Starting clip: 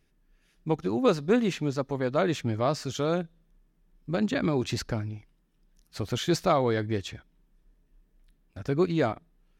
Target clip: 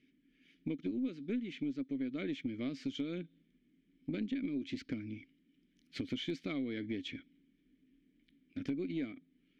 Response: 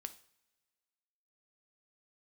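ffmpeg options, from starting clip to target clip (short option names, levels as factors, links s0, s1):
-filter_complex "[0:a]asplit=3[s0][s1][s2];[s0]bandpass=f=270:t=q:w=8,volume=1[s3];[s1]bandpass=f=2290:t=q:w=8,volume=0.501[s4];[s2]bandpass=f=3010:t=q:w=8,volume=0.355[s5];[s3][s4][s5]amix=inputs=3:normalize=0,acompressor=threshold=0.00316:ratio=6,aeval=exprs='0.00891*(cos(1*acos(clip(val(0)/0.00891,-1,1)))-cos(1*PI/2))+0.000501*(cos(2*acos(clip(val(0)/0.00891,-1,1)))-cos(2*PI/2))':c=same,volume=5.01"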